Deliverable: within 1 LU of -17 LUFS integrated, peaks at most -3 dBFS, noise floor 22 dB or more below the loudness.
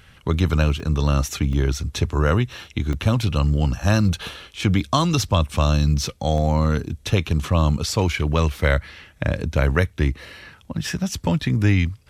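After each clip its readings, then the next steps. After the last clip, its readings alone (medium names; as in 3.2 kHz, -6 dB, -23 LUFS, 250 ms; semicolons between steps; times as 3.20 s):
dropouts 4; longest dropout 1.2 ms; loudness -21.5 LUFS; peak level -3.0 dBFS; loudness target -17.0 LUFS
-> interpolate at 0.80/1.53/2.93/6.38 s, 1.2 ms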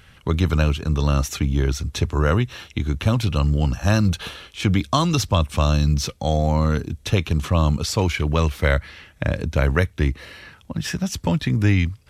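dropouts 0; loudness -21.5 LUFS; peak level -3.0 dBFS; loudness target -17.0 LUFS
-> trim +4.5 dB; peak limiter -3 dBFS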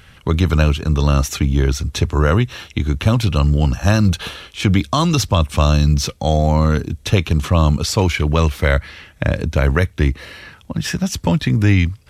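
loudness -17.5 LUFS; peak level -3.0 dBFS; noise floor -47 dBFS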